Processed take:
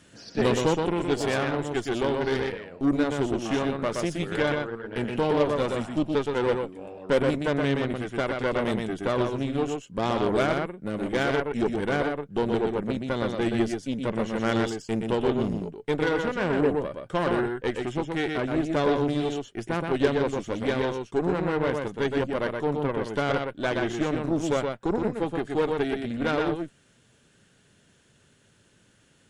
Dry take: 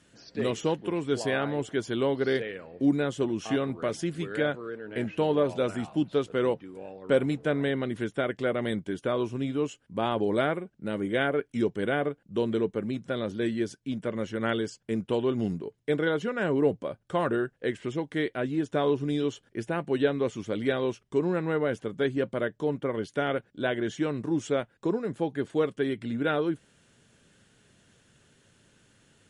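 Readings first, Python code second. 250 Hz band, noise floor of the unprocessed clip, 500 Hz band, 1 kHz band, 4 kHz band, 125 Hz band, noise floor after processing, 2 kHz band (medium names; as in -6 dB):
+2.0 dB, -67 dBFS, +2.0 dB, +5.0 dB, +3.5 dB, +3.0 dB, -61 dBFS, +2.5 dB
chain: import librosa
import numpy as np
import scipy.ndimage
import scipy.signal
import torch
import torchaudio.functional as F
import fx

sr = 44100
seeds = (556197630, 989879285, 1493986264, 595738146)

y = x + 10.0 ** (-4.0 / 20.0) * np.pad(x, (int(122 * sr / 1000.0), 0))[:len(x)]
y = fx.cheby_harmonics(y, sr, harmonics=(8,), levels_db=(-20,), full_scale_db=-10.5)
y = fx.rider(y, sr, range_db=10, speed_s=2.0)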